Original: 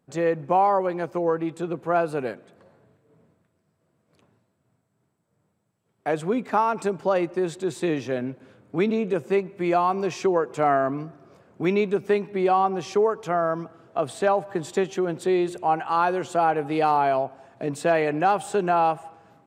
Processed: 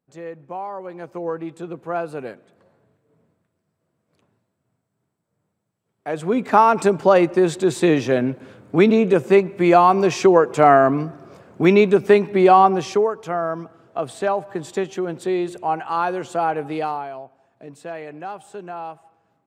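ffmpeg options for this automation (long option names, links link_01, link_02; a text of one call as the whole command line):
ffmpeg -i in.wav -af "volume=8.5dB,afade=type=in:start_time=0.75:duration=0.54:silence=0.398107,afade=type=in:start_time=6.07:duration=0.55:silence=0.266073,afade=type=out:start_time=12.65:duration=0.45:silence=0.375837,afade=type=out:start_time=16.67:duration=0.41:silence=0.266073" out.wav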